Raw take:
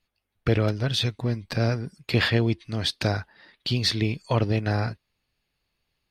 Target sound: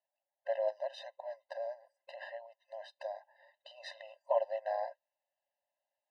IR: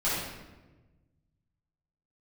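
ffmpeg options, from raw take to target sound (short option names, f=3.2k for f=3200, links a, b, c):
-filter_complex "[0:a]asettb=1/sr,asplit=3[a][b][c];[a]atrim=end=1.394[d];[b]atrim=start=1.39:end=3.78,asetpts=PTS-STARTPTS,afade=t=in:d=0.004:c=qsin,afade=t=out:st=2.386:d=0.004:c=qsin,acompressor=threshold=-28dB:ratio=6[e];[c]atrim=start=3.776[f];[d][e]acrossfade=d=0.004:c1=hsin:c2=qsin[g];[g][f]acrossfade=d=0.004:c1=qsin:c2=hsin,bandpass=f=390:t=q:w=4.3:csg=0,afftfilt=real='re*eq(mod(floor(b*sr/1024/520),2),1)':imag='im*eq(mod(floor(b*sr/1024/520),2),1)':win_size=1024:overlap=0.75,volume=13dB"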